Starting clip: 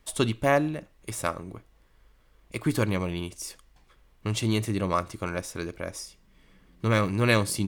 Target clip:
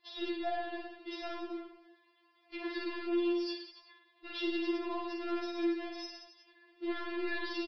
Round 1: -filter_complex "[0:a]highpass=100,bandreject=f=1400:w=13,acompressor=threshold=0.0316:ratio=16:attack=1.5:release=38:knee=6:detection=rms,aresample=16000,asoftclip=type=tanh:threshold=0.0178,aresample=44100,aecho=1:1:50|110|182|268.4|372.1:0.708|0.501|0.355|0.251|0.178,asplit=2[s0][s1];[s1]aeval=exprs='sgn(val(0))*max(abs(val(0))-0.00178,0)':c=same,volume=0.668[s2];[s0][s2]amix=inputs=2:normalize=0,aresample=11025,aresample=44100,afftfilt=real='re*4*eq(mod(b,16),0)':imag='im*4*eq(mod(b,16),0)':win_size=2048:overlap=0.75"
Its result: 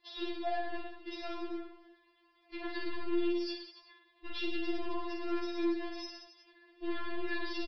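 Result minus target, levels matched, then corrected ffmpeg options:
125 Hz band +11.5 dB
-filter_complex "[0:a]highpass=300,bandreject=f=1400:w=13,acompressor=threshold=0.0316:ratio=16:attack=1.5:release=38:knee=6:detection=rms,aresample=16000,asoftclip=type=tanh:threshold=0.0178,aresample=44100,aecho=1:1:50|110|182|268.4|372.1:0.708|0.501|0.355|0.251|0.178,asplit=2[s0][s1];[s1]aeval=exprs='sgn(val(0))*max(abs(val(0))-0.00178,0)':c=same,volume=0.668[s2];[s0][s2]amix=inputs=2:normalize=0,aresample=11025,aresample=44100,afftfilt=real='re*4*eq(mod(b,16),0)':imag='im*4*eq(mod(b,16),0)':win_size=2048:overlap=0.75"

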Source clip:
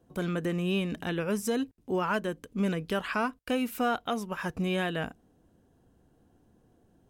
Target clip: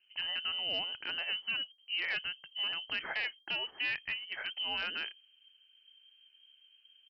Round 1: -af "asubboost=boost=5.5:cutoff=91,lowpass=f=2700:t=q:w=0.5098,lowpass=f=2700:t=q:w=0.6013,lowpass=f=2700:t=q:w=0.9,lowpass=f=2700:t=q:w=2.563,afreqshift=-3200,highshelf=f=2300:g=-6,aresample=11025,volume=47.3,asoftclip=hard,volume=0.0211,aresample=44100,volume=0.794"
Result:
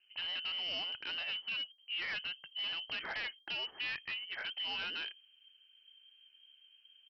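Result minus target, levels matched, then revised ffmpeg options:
overload inside the chain: distortion +13 dB
-af "asubboost=boost=5.5:cutoff=91,lowpass=f=2700:t=q:w=0.5098,lowpass=f=2700:t=q:w=0.6013,lowpass=f=2700:t=q:w=0.9,lowpass=f=2700:t=q:w=2.563,afreqshift=-3200,highshelf=f=2300:g=-6,aresample=11025,volume=17.8,asoftclip=hard,volume=0.0562,aresample=44100,volume=0.794"

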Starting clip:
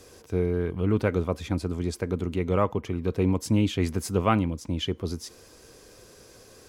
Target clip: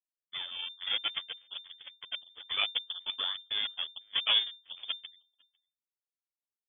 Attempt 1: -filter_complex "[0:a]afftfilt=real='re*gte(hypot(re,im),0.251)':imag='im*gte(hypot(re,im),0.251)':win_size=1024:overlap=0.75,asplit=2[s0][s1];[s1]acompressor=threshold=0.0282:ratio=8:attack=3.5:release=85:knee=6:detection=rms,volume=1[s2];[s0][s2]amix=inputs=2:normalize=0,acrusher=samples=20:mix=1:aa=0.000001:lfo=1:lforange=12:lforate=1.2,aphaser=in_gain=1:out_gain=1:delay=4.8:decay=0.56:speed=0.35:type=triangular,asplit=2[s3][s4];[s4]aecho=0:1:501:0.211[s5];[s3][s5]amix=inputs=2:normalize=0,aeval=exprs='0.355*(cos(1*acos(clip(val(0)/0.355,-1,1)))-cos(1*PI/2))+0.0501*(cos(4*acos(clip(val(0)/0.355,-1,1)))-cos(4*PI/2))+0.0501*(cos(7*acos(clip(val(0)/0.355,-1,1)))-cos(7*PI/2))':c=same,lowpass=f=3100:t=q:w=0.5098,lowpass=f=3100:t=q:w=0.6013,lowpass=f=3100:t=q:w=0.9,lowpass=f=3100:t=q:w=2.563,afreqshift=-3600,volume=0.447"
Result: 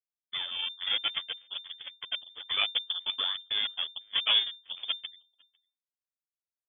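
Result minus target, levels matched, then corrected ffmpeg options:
compression: peak gain reduction -10 dB
-filter_complex "[0:a]afftfilt=real='re*gte(hypot(re,im),0.251)':imag='im*gte(hypot(re,im),0.251)':win_size=1024:overlap=0.75,asplit=2[s0][s1];[s1]acompressor=threshold=0.0075:ratio=8:attack=3.5:release=85:knee=6:detection=rms,volume=1[s2];[s0][s2]amix=inputs=2:normalize=0,acrusher=samples=20:mix=1:aa=0.000001:lfo=1:lforange=12:lforate=1.2,aphaser=in_gain=1:out_gain=1:delay=4.8:decay=0.56:speed=0.35:type=triangular,asplit=2[s3][s4];[s4]aecho=0:1:501:0.211[s5];[s3][s5]amix=inputs=2:normalize=0,aeval=exprs='0.355*(cos(1*acos(clip(val(0)/0.355,-1,1)))-cos(1*PI/2))+0.0501*(cos(4*acos(clip(val(0)/0.355,-1,1)))-cos(4*PI/2))+0.0501*(cos(7*acos(clip(val(0)/0.355,-1,1)))-cos(7*PI/2))':c=same,lowpass=f=3100:t=q:w=0.5098,lowpass=f=3100:t=q:w=0.6013,lowpass=f=3100:t=q:w=0.9,lowpass=f=3100:t=q:w=2.563,afreqshift=-3600,volume=0.447"

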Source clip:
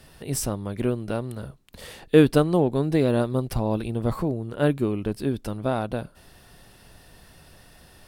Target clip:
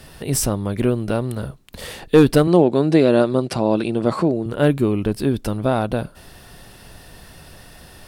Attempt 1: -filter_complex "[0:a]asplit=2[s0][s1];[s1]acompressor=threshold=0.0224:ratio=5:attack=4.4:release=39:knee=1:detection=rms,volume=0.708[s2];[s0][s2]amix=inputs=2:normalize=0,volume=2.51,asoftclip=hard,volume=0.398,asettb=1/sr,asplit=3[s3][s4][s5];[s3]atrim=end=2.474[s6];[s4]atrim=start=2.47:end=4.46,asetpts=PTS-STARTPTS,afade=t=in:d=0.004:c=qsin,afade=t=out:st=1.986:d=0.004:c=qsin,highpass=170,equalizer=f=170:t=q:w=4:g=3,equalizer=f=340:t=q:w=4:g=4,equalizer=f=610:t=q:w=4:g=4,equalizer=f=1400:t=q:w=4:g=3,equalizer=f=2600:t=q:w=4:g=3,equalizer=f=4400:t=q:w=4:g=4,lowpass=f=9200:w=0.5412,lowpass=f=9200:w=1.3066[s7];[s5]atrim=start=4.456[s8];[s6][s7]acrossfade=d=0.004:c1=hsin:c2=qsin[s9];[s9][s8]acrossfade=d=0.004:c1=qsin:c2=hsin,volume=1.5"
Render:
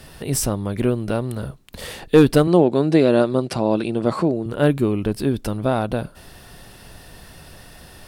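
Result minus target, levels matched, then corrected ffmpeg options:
compression: peak gain reduction +5 dB
-filter_complex "[0:a]asplit=2[s0][s1];[s1]acompressor=threshold=0.0473:ratio=5:attack=4.4:release=39:knee=1:detection=rms,volume=0.708[s2];[s0][s2]amix=inputs=2:normalize=0,volume=2.51,asoftclip=hard,volume=0.398,asettb=1/sr,asplit=3[s3][s4][s5];[s3]atrim=end=2.474[s6];[s4]atrim=start=2.47:end=4.46,asetpts=PTS-STARTPTS,afade=t=in:d=0.004:c=qsin,afade=t=out:st=1.986:d=0.004:c=qsin,highpass=170,equalizer=f=170:t=q:w=4:g=3,equalizer=f=340:t=q:w=4:g=4,equalizer=f=610:t=q:w=4:g=4,equalizer=f=1400:t=q:w=4:g=3,equalizer=f=2600:t=q:w=4:g=3,equalizer=f=4400:t=q:w=4:g=4,lowpass=f=9200:w=0.5412,lowpass=f=9200:w=1.3066[s7];[s5]atrim=start=4.456[s8];[s6][s7]acrossfade=d=0.004:c1=hsin:c2=qsin[s9];[s9][s8]acrossfade=d=0.004:c1=qsin:c2=hsin,volume=1.5"

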